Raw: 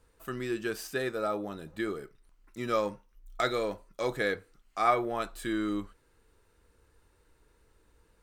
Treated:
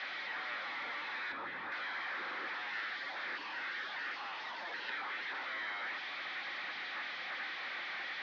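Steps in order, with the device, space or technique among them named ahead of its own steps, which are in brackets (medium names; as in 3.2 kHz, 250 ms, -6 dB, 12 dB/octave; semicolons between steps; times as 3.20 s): 2.73–4.90 s: frequency weighting D; spectral gate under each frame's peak -30 dB weak; digital answering machine (band-pass 320–3000 Hz; one-bit delta coder 32 kbps, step -43 dBFS; cabinet simulation 390–3300 Hz, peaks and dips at 430 Hz -8 dB, 660 Hz -9 dB, 1 kHz -5 dB, 1.8 kHz +4 dB, 2.8 kHz -10 dB); 1.32–1.72 s: tilt EQ -4 dB/octave; trim +11.5 dB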